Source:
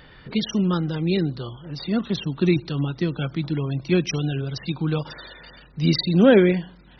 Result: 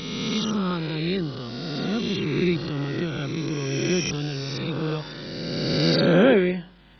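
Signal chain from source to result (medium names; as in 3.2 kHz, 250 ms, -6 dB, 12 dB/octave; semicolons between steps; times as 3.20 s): reverse spectral sustain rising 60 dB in 2.30 s; trim -5.5 dB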